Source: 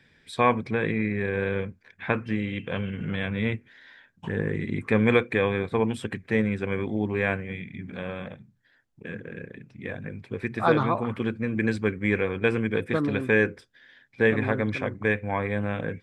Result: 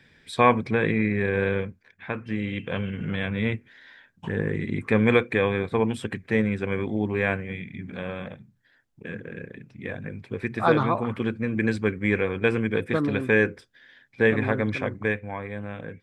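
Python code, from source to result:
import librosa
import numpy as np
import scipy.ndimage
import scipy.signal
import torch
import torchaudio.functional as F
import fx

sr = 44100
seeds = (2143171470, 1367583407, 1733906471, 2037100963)

y = fx.gain(x, sr, db=fx.line((1.49, 3.0), (2.09, -6.0), (2.47, 1.0), (14.97, 1.0), (15.37, -6.5)))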